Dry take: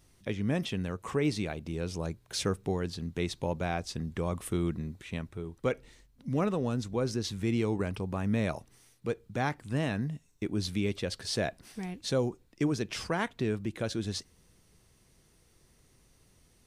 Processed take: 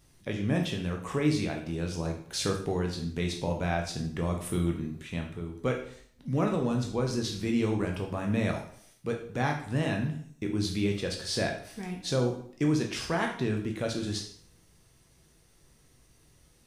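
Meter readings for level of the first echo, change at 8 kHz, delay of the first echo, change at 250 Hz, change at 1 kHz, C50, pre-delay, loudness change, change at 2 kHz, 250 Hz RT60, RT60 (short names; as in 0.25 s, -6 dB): none, +2.5 dB, none, +2.5 dB, +2.0 dB, 7.5 dB, 6 ms, +2.0 dB, +2.5 dB, 0.55 s, 0.55 s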